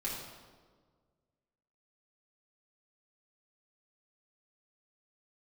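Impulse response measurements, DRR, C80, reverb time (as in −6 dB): −6.5 dB, 3.5 dB, 1.6 s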